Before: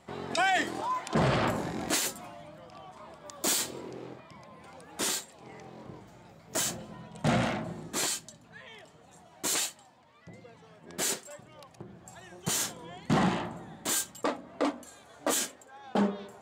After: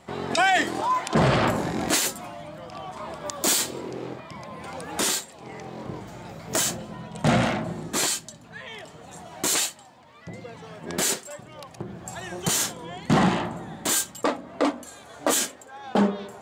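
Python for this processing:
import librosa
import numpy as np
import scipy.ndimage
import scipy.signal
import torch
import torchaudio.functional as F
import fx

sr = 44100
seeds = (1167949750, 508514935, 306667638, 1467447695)

y = fx.recorder_agc(x, sr, target_db=-21.5, rise_db_per_s=6.6, max_gain_db=30)
y = y * librosa.db_to_amplitude(6.0)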